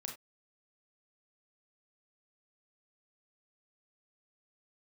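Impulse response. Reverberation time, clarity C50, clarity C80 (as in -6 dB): not exponential, 7.5 dB, 15.0 dB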